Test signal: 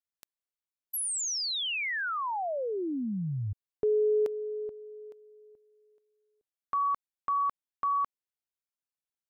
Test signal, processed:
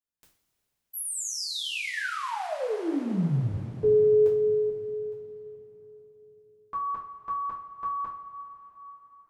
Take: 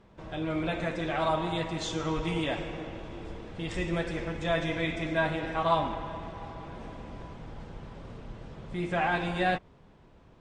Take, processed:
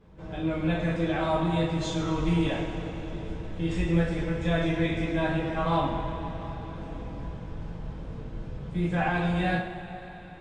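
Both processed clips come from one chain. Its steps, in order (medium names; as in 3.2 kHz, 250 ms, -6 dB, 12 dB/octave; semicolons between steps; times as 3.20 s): bass shelf 300 Hz +9.5 dB; two-slope reverb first 0.39 s, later 4.3 s, from -18 dB, DRR -6.5 dB; trim -8 dB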